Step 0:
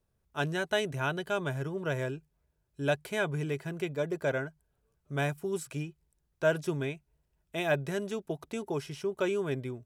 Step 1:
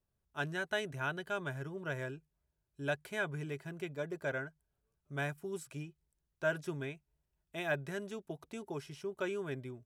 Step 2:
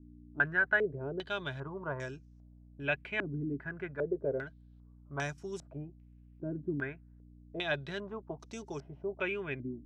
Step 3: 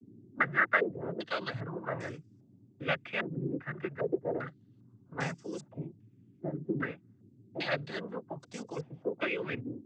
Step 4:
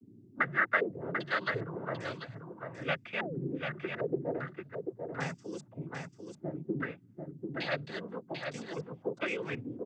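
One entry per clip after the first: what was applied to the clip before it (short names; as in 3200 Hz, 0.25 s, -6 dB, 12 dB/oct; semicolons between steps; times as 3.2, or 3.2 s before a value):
notch 480 Hz, Q 12; dynamic EQ 1600 Hz, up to +5 dB, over -46 dBFS, Q 1.8; gain -7.5 dB
hum 60 Hz, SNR 16 dB; stepped low-pass 2.5 Hz 290–5900 Hz
noise vocoder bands 16; gain +1.5 dB
echo 0.742 s -5.5 dB; painted sound fall, 3.19–3.4, 320–980 Hz -40 dBFS; gain -1.5 dB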